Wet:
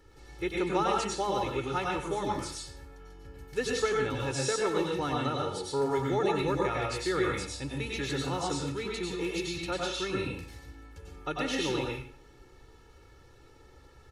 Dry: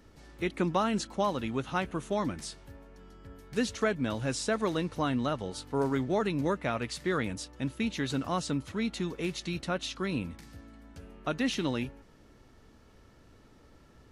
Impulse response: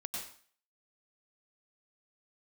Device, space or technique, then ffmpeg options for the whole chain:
microphone above a desk: -filter_complex "[0:a]aecho=1:1:2.3:0.82[link_01];[1:a]atrim=start_sample=2205[link_02];[link_01][link_02]afir=irnorm=-1:irlink=0"

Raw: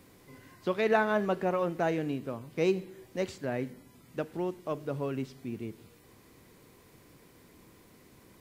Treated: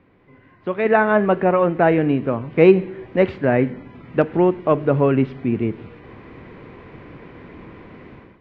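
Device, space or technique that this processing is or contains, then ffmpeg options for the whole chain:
action camera in a waterproof case: -af "lowpass=frequency=2600:width=0.5412,lowpass=frequency=2600:width=1.3066,dynaudnorm=framelen=580:gausssize=3:maxgain=16.5dB,volume=1.5dB" -ar 48000 -c:a aac -b:a 128k

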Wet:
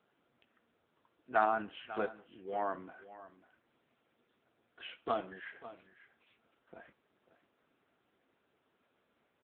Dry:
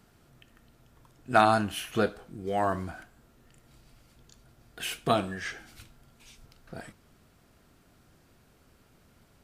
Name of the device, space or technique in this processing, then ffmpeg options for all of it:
satellite phone: -filter_complex "[0:a]asplit=3[link_01][link_02][link_03];[link_01]afade=type=out:start_time=2.57:duration=0.02[link_04];[link_02]adynamicequalizer=threshold=0.00178:dfrequency=270:dqfactor=7.8:tfrequency=270:tqfactor=7.8:attack=5:release=100:ratio=0.375:range=3:mode=boostabove:tftype=bell,afade=type=in:start_time=2.57:duration=0.02,afade=type=out:start_time=2.98:duration=0.02[link_05];[link_03]afade=type=in:start_time=2.98:duration=0.02[link_06];[link_04][link_05][link_06]amix=inputs=3:normalize=0,highpass=310,lowpass=3200,aecho=1:1:545:0.168,volume=-7dB" -ar 8000 -c:a libopencore_amrnb -b:a 6700

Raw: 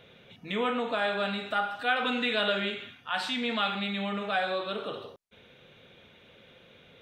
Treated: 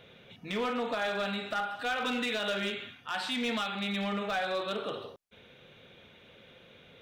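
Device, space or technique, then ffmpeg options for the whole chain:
limiter into clipper: -af "alimiter=limit=-20.5dB:level=0:latency=1:release=284,asoftclip=type=hard:threshold=-26.5dB"

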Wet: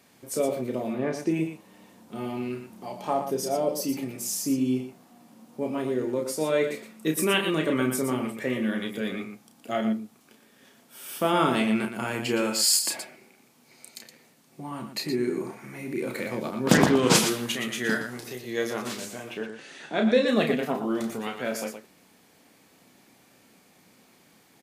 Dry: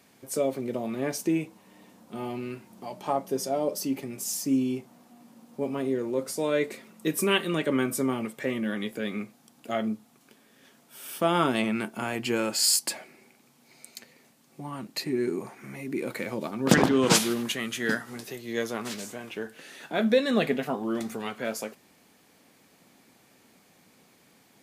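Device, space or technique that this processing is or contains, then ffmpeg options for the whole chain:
slapback doubling: -filter_complex "[0:a]asettb=1/sr,asplit=3[link_01][link_02][link_03];[link_01]atrim=end=0.934[link_04];[link_02]atrim=start=0.93:end=1.34,asetpts=PTS-STARTPTS,afade=type=in:duration=0.004:curve=qsin,afade=type=out:start_time=0.406:duration=0.004:curve=qsin,aemphasis=mode=reproduction:type=75fm[link_05];[link_03]atrim=start=1.336[link_06];[link_04][link_05]acrossfade=duration=0.004:curve1=hsin:curve2=qsin[link_07];[link_07][link_06]acrossfade=duration=0.004:curve1=qsin:curve2=hsin,asettb=1/sr,asplit=3[link_08][link_09][link_10];[link_08]atrim=end=19.344[link_11];[link_09]atrim=start=19.34:end=20.28,asetpts=PTS-STARTPTS,afade=type=in:duration=0.004:curve=qsin,afade=type=out:start_time=0.936:duration=0.004:curve=qsin,lowpass=frequency=8600:width=0.5412,lowpass=frequency=8600:width=1.3066[link_12];[link_10]atrim=start=20.276[link_13];[link_11][link_12]acrossfade=duration=0.004:curve1=hsin:curve2=qsin[link_14];[link_14][link_13]acrossfade=duration=0.004:curve1=qsin:curve2=hsin,asplit=3[link_15][link_16][link_17];[link_16]adelay=32,volume=-6dB[link_18];[link_17]adelay=118,volume=-8dB[link_19];[link_15][link_18][link_19]amix=inputs=3:normalize=0"

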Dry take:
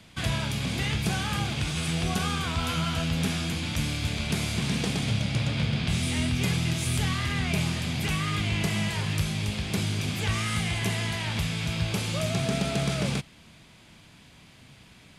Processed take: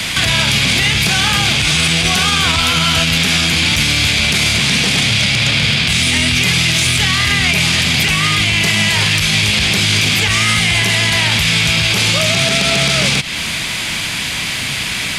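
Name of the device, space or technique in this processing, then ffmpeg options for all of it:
mastering chain: -filter_complex "[0:a]equalizer=frequency=2100:width_type=o:width=0.67:gain=3.5,acrossover=split=1100|2200|6200[link_01][link_02][link_03][link_04];[link_01]acompressor=threshold=-33dB:ratio=4[link_05];[link_02]acompressor=threshold=-49dB:ratio=4[link_06];[link_03]acompressor=threshold=-41dB:ratio=4[link_07];[link_04]acompressor=threshold=-56dB:ratio=4[link_08];[link_05][link_06][link_07][link_08]amix=inputs=4:normalize=0,acompressor=threshold=-36dB:ratio=2,asoftclip=type=tanh:threshold=-29dB,tiltshelf=frequency=1200:gain=-6.5,alimiter=level_in=34.5dB:limit=-1dB:release=50:level=0:latency=1,volume=-4dB"

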